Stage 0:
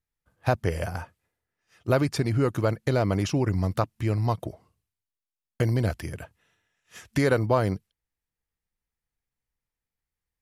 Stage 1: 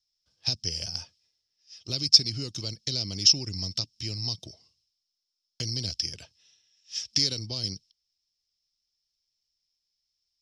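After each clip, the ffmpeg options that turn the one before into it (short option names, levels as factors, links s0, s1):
-filter_complex "[0:a]acrossover=split=330|3000[s0][s1][s2];[s1]acompressor=threshold=0.0141:ratio=6[s3];[s0][s3][s2]amix=inputs=3:normalize=0,lowpass=f=5300:t=q:w=15,highshelf=f=2300:t=q:w=1.5:g=13,volume=0.299"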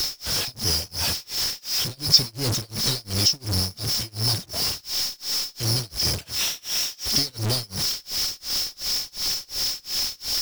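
-af "aeval=exprs='val(0)+0.5*0.158*sgn(val(0))':c=same,tremolo=f=2.8:d=0.98,volume=0.891"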